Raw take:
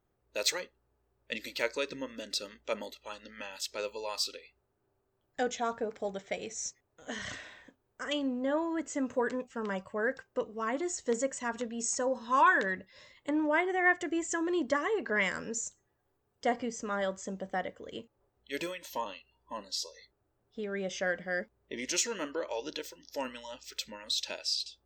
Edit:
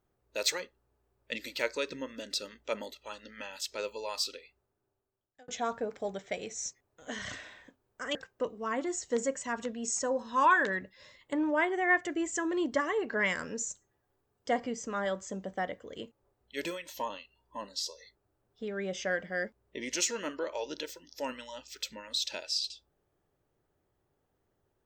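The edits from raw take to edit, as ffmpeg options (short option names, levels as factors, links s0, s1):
-filter_complex "[0:a]asplit=3[s0][s1][s2];[s0]atrim=end=5.48,asetpts=PTS-STARTPTS,afade=t=out:st=4.35:d=1.13[s3];[s1]atrim=start=5.48:end=8.152,asetpts=PTS-STARTPTS,afade=t=in:d=0.004:c=hsin[s4];[s2]atrim=start=10.108[s5];[s3][s4]concat=n=2:v=0:a=1[s6];[s6][s5]acrossfade=d=0.004:c1=hsin:c2=hsin"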